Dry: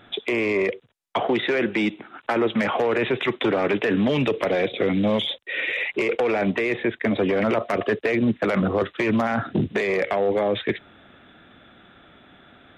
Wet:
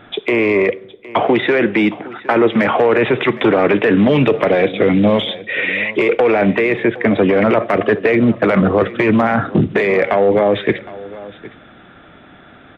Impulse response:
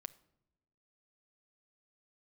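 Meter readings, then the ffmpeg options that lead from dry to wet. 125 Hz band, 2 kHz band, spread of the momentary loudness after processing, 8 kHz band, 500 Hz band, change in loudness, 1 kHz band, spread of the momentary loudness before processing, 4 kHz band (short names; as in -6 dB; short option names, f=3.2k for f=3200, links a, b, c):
+9.0 dB, +7.5 dB, 6 LU, n/a, +9.0 dB, +8.5 dB, +8.5 dB, 5 LU, +4.0 dB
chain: -filter_complex "[0:a]aecho=1:1:763:0.119,asplit=2[a][b];[1:a]atrim=start_sample=2205,lowpass=3.3k[c];[b][c]afir=irnorm=-1:irlink=0,volume=11dB[d];[a][d]amix=inputs=2:normalize=0,volume=-1dB"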